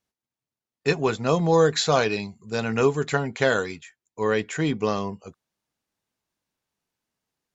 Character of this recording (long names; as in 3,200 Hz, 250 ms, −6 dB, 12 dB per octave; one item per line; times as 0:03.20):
background noise floor −92 dBFS
spectral slope −5.0 dB per octave